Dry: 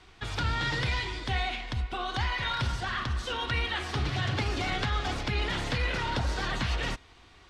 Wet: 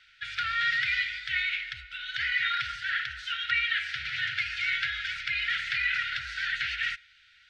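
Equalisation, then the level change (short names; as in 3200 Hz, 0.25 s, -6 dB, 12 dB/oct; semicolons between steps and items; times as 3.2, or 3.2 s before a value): dynamic EQ 2100 Hz, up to +7 dB, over -47 dBFS, Q 1.8; brick-wall FIR band-stop 180–1300 Hz; three-band isolator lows -23 dB, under 590 Hz, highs -16 dB, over 4800 Hz; +1.5 dB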